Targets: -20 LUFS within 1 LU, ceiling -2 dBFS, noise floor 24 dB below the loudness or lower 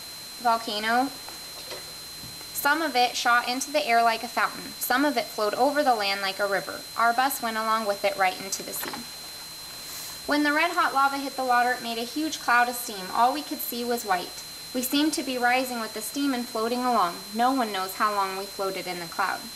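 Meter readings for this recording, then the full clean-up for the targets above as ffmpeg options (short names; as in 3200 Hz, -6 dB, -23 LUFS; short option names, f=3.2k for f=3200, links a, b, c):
steady tone 4100 Hz; tone level -40 dBFS; noise floor -40 dBFS; noise floor target -50 dBFS; loudness -25.5 LUFS; peak -10.5 dBFS; loudness target -20.0 LUFS
-> -af "bandreject=f=4.1k:w=30"
-af "afftdn=nr=10:nf=-40"
-af "volume=5.5dB"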